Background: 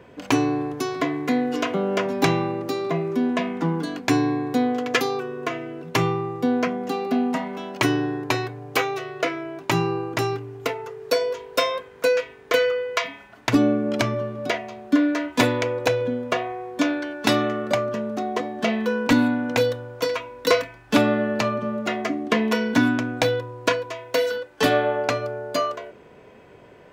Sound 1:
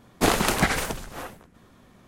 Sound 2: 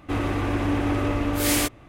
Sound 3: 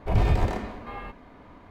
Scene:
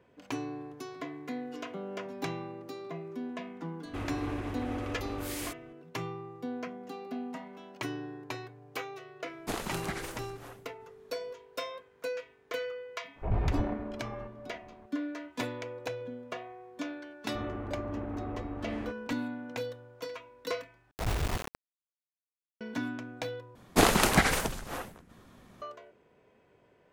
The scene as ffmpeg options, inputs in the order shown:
-filter_complex "[2:a]asplit=2[s0][s1];[1:a]asplit=2[s2][s3];[3:a]asplit=2[s4][s5];[0:a]volume=0.158[s6];[s0]alimiter=limit=0.1:level=0:latency=1:release=497[s7];[s2]alimiter=limit=0.316:level=0:latency=1:release=272[s8];[s4]lowpass=1700[s9];[s1]lowpass=1300[s10];[s5]acrusher=bits=3:mix=0:aa=0.000001[s11];[s6]asplit=3[s12][s13][s14];[s12]atrim=end=20.914[s15];[s11]atrim=end=1.7,asetpts=PTS-STARTPTS,volume=0.299[s16];[s13]atrim=start=22.606:end=23.554[s17];[s3]atrim=end=2.07,asetpts=PTS-STARTPTS,volume=0.841[s18];[s14]atrim=start=25.616[s19];[s7]atrim=end=1.88,asetpts=PTS-STARTPTS,volume=0.422,afade=t=in:d=0.004:c=hsin,afade=t=out:st=1.876:d=0.004:c=hsin,adelay=169785S[s20];[s8]atrim=end=2.07,asetpts=PTS-STARTPTS,volume=0.237,afade=t=in:d=0.004:c=hsin,afade=t=out:st=2.066:d=0.004:c=hsin,adelay=9260[s21];[s9]atrim=end=1.7,asetpts=PTS-STARTPTS,volume=0.422,afade=t=in:d=0.004:c=hsin,afade=t=out:st=1.696:d=0.004:c=hsin,adelay=580356S[s22];[s10]atrim=end=1.88,asetpts=PTS-STARTPTS,volume=0.2,afade=t=in:d=0.004:c=hsin,afade=t=out:st=1.876:d=0.004:c=hsin,adelay=17240[s23];[s15][s16]acrossfade=d=0.004:c1=hsin:c2=hsin[s24];[s24][s17]acrossfade=d=0.004:c1=hsin:c2=hsin[s25];[s25][s18]acrossfade=d=0.004:c1=hsin:c2=hsin[s26];[s26][s19]acrossfade=d=0.004:c1=hsin:c2=hsin[s27];[s27][s20][s21][s22][s23]amix=inputs=5:normalize=0"

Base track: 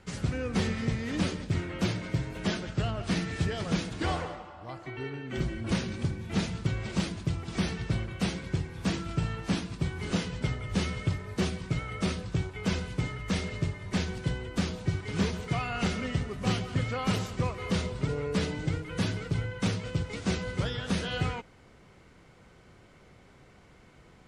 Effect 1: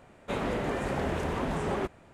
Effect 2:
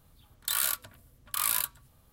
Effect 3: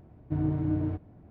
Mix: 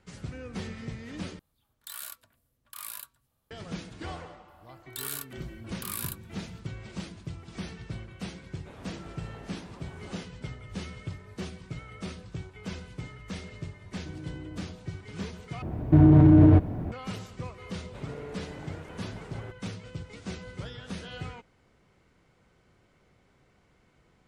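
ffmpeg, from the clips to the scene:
-filter_complex "[2:a]asplit=2[s0][s1];[1:a]asplit=2[s2][s3];[3:a]asplit=2[s4][s5];[0:a]volume=0.376[s6];[s0]lowshelf=f=120:g=-6.5[s7];[s4]acompressor=threshold=0.0251:ratio=6:attack=3.2:release=140:knee=1:detection=peak[s8];[s5]alimiter=level_in=23.7:limit=0.891:release=50:level=0:latency=1[s9];[s6]asplit=3[s10][s11][s12];[s10]atrim=end=1.394[s13];[s7]atrim=end=2.12,asetpts=PTS-STARTPTS,volume=0.237[s14];[s11]atrim=start=3.506:end=15.624[s15];[s9]atrim=end=1.3,asetpts=PTS-STARTPTS,volume=0.398[s16];[s12]atrim=start=16.916[s17];[s1]atrim=end=2.12,asetpts=PTS-STARTPTS,volume=0.398,afade=t=in:d=0.004:c=hsin,afade=t=out:st=2.116:d=0.004:c=hsin,adelay=4480[s18];[s2]atrim=end=2.13,asetpts=PTS-STARTPTS,volume=0.126,afade=t=in:d=0.004:c=hsin,afade=t=out:st=2.126:d=0.004:c=hsin,adelay=8370[s19];[s8]atrim=end=1.3,asetpts=PTS-STARTPTS,volume=0.473,afade=t=in:d=0.004:c=hsin,afade=t=out:st=1.296:d=0.004:c=hsin,adelay=13750[s20];[s3]atrim=end=2.13,asetpts=PTS-STARTPTS,volume=0.178,afade=t=in:d=0.004:c=hsin,afade=t=out:st=2.126:d=0.004:c=hsin,adelay=17650[s21];[s13][s14]acrossfade=d=0.004:c1=hsin:c2=hsin[s22];[s22][s15]acrossfade=d=0.004:c1=hsin:c2=hsin[s23];[s23][s16]acrossfade=d=0.004:c1=hsin:c2=hsin[s24];[s24][s17]acrossfade=d=0.004:c1=hsin:c2=hsin[s25];[s25][s18][s19][s20][s21]amix=inputs=5:normalize=0"

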